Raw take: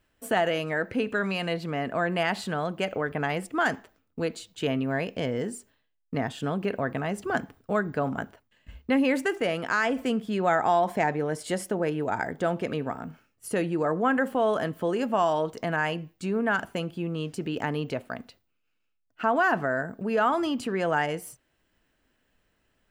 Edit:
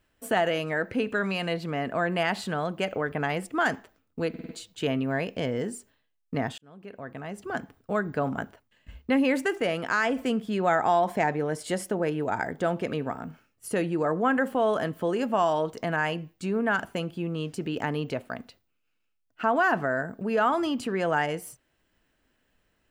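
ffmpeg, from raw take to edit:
-filter_complex "[0:a]asplit=6[a][b][c][d][e][f];[a]atrim=end=4.342[g];[b]atrim=start=4.288:end=4.342[h];[c]atrim=start=4.288:end=4.342[i];[d]atrim=start=4.288:end=4.342[j];[e]atrim=start=4.288:end=6.38,asetpts=PTS-STARTPTS,afade=t=out:st=2.088:d=0.004:c=hsin[k];[f]atrim=start=6.38,asetpts=PTS-STARTPTS,afade=t=in:d=1.61[l];[g][h]acrossfade=d=0.004:c1=hsin:c2=hsin[m];[m][i]acrossfade=d=0.004:c1=hsin:c2=hsin[n];[n][j]acrossfade=d=0.004:c1=hsin:c2=hsin[o];[k][l]concat=n=2:v=0:a=1[p];[o][p]acrossfade=d=0.004:c1=hsin:c2=hsin"

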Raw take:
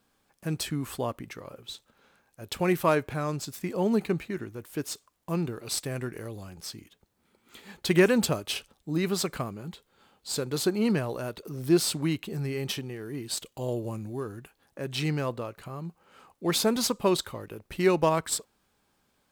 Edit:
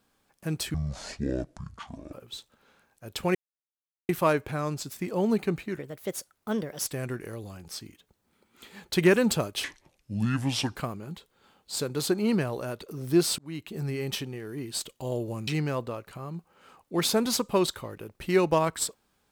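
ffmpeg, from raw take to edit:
-filter_complex "[0:a]asplit=10[a][b][c][d][e][f][g][h][i][j];[a]atrim=end=0.744[k];[b]atrim=start=0.74:end=1.49,asetpts=PTS-STARTPTS,asetrate=23814,aresample=44100[l];[c]atrim=start=1.486:end=2.71,asetpts=PTS-STARTPTS,afade=t=out:st=1.22:d=0.004:c=hsin,apad=pad_dur=0.74[m];[d]atrim=start=2.71:end=4.414,asetpts=PTS-STARTPTS,afade=t=in:d=0.004:c=hsin[n];[e]atrim=start=4.41:end=5.79,asetpts=PTS-STARTPTS,asetrate=56448,aresample=44100,atrim=end_sample=47545,asetpts=PTS-STARTPTS[o];[f]atrim=start=5.786:end=8.564[p];[g]atrim=start=8.56:end=9.32,asetpts=PTS-STARTPTS,asetrate=29988,aresample=44100,atrim=end_sample=49288,asetpts=PTS-STARTPTS[q];[h]atrim=start=9.316:end=11.95,asetpts=PTS-STARTPTS,afade=t=out:st=2.63:d=0.004:c=hsin[r];[i]atrim=start=11.95:end=14.042,asetpts=PTS-STARTPTS,afade=t=in:d=0.43[s];[j]atrim=start=14.978[t];[k][l]acrossfade=d=0.004:c1=hsin:c2=hsin[u];[m][n]concat=n=2:v=0:a=1[v];[u][v]acrossfade=d=0.004:c1=hsin:c2=hsin[w];[w][o]acrossfade=d=0.004:c1=hsin:c2=hsin[x];[x][p]acrossfade=d=0.004:c1=hsin:c2=hsin[y];[y][q]acrossfade=d=0.004:c1=hsin:c2=hsin[z];[r][s]concat=n=2:v=0:a=1[aa];[z][aa]acrossfade=d=0.004:c1=hsin:c2=hsin[ab];[ab][t]acrossfade=d=0.004:c1=hsin:c2=hsin"

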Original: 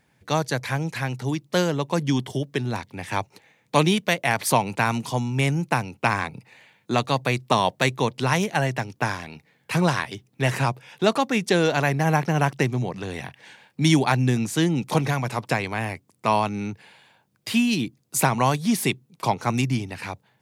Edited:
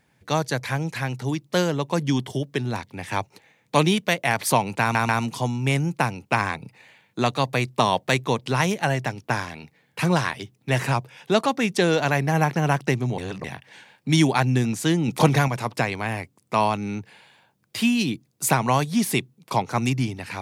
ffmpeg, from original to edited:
-filter_complex "[0:a]asplit=7[a][b][c][d][e][f][g];[a]atrim=end=4.952[h];[b]atrim=start=4.808:end=4.952[i];[c]atrim=start=4.808:end=12.902[j];[d]atrim=start=12.898:end=13.162,asetpts=PTS-STARTPTS,areverse[k];[e]atrim=start=13.158:end=14.802[l];[f]atrim=start=14.798:end=15.202,asetpts=PTS-STARTPTS,volume=4.5dB[m];[g]atrim=start=15.198[n];[h][i]acrossfade=d=0.004:c1=hsin:c2=hsin[o];[o][j]acrossfade=d=0.004:c1=hsin:c2=hsin[p];[p][k]acrossfade=d=0.004:c1=hsin:c2=hsin[q];[q][l]acrossfade=d=0.004:c1=hsin:c2=hsin[r];[r][m]acrossfade=d=0.004:c1=hsin:c2=hsin[s];[s][n]acrossfade=d=0.004:c1=hsin:c2=hsin"

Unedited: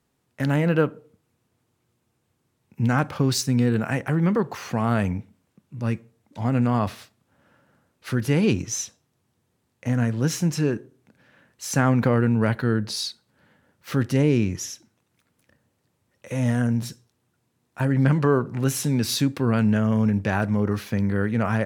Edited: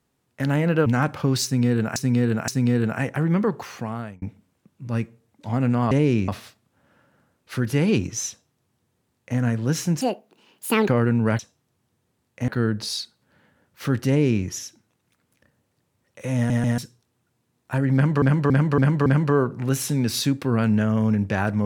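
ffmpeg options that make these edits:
-filter_complex "[0:a]asplit=18[a][b][c][d][e][f][g][h][i][j][k][l][m][n][o][p][q][r];[a]atrim=end=0.862[s];[b]atrim=start=2.818:end=3.922[t];[c]atrim=start=3.398:end=3.922[u];[d]atrim=start=3.398:end=5.14,asetpts=PTS-STARTPTS,afade=t=out:st=1.062:d=0.68[v];[e]atrim=start=5.14:end=6.832,asetpts=PTS-STARTPTS,afade=t=in:d=0.004:c=hsin[w];[f]atrim=start=14.148:end=14.522[x];[g]atrim=start=6.828:end=10.564[y];[h]atrim=start=10.56:end=12.04,asetpts=PTS-STARTPTS,asetrate=74970,aresample=44100[z];[i]atrim=start=12.036:end=12.552[aa];[j]atrim=start=8.838:end=9.932[ab];[k]atrim=start=12.548:end=16.572[ac];[l]atrim=start=16.428:end=16.572[ad];[m]atrim=start=16.428:end=16.572[ae];[n]atrim=start=16.848:end=18.292[af];[o]atrim=start=18.008:end=18.292[ag];[p]atrim=start=18.008:end=18.292[ah];[q]atrim=start=18.008:end=18.292[ai];[r]atrim=start=18.008[aj];[s][t]acrossfade=d=0.004:c1=hsin:c2=hsin[ak];[ak][u]acrossfade=d=0.004:c1=hsin:c2=hsin[al];[v][w]concat=n=2:v=0:a=1[am];[al][am]acrossfade=d=0.004:c1=hsin:c2=hsin[an];[an][x]acrossfade=d=0.004:c1=hsin:c2=hsin[ao];[ao][y]acrossfade=d=0.004:c1=hsin:c2=hsin[ap];[ap][z]acrossfade=d=0.004:c1=hsin:c2=hsin[aq];[aq][aa]acrossfade=d=0.004:c1=hsin:c2=hsin[ar];[ar][ab]acrossfade=d=0.004:c1=hsin:c2=hsin[as];[as][ac]acrossfade=d=0.004:c1=hsin:c2=hsin[at];[at][ad]acrossfade=d=0.004:c1=hsin:c2=hsin[au];[au][ae]acrossfade=d=0.004:c1=hsin:c2=hsin[av];[av][af]acrossfade=d=0.004:c1=hsin:c2=hsin[aw];[aw][ag]acrossfade=d=0.004:c1=hsin:c2=hsin[ax];[ax][ah]acrossfade=d=0.004:c1=hsin:c2=hsin[ay];[ay][ai]acrossfade=d=0.004:c1=hsin:c2=hsin[az];[az][aj]acrossfade=d=0.004:c1=hsin:c2=hsin"

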